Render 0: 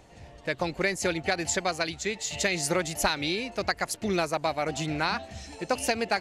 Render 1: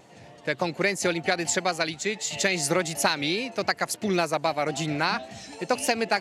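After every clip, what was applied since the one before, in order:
high-pass filter 120 Hz 24 dB per octave
pitch vibrato 3.6 Hz 43 cents
level +2.5 dB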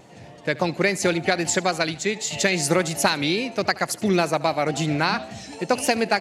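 low-shelf EQ 330 Hz +4.5 dB
repeating echo 74 ms, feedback 41%, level −20 dB
level +2.5 dB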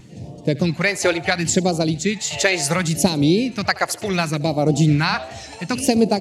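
tilt shelving filter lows +4.5 dB, about 640 Hz
all-pass phaser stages 2, 0.7 Hz, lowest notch 180–1,700 Hz
level +6.5 dB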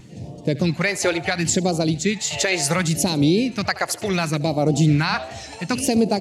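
brickwall limiter −8.5 dBFS, peak gain reduction 7.5 dB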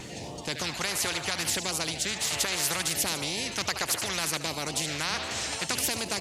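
every bin compressed towards the loudest bin 4 to 1
level −2.5 dB

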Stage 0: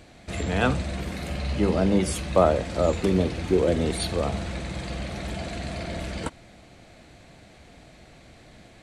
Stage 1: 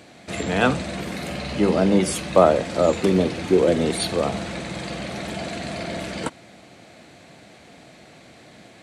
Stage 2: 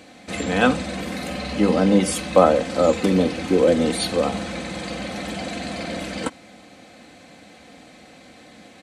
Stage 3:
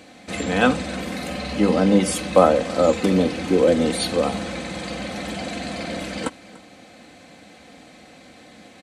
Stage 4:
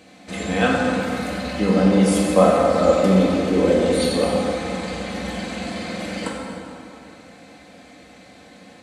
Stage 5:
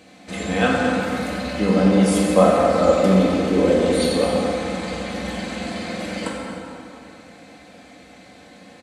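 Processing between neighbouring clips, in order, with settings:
high-pass filter 150 Hz 12 dB per octave; level +4.5 dB
comb filter 3.9 ms, depth 53%
single-tap delay 292 ms −20.5 dB
dense smooth reverb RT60 2.8 s, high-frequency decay 0.55×, DRR −3 dB; level −4 dB
far-end echo of a speakerphone 220 ms, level −10 dB

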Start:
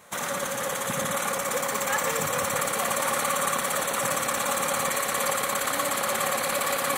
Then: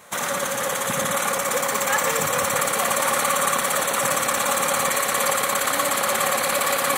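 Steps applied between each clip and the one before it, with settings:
low-shelf EQ 320 Hz −3 dB
level +5 dB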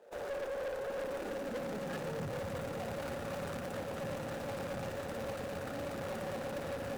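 running median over 41 samples
high-pass filter sweep 460 Hz → 88 Hz, 0:00.93–0:02.41
tube saturation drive 30 dB, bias 0.4
level −5 dB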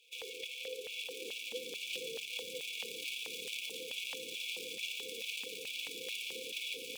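brick-wall band-stop 520–2,200 Hz
hollow resonant body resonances 910/3,400 Hz, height 15 dB, ringing for 45 ms
auto-filter high-pass square 2.3 Hz 870–2,400 Hz
level +7 dB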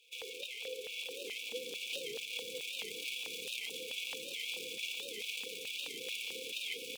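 repeating echo 407 ms, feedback 53%, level −13 dB
on a send at −20 dB: convolution reverb RT60 3.8 s, pre-delay 50 ms
on the sum: wow of a warped record 78 rpm, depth 160 cents

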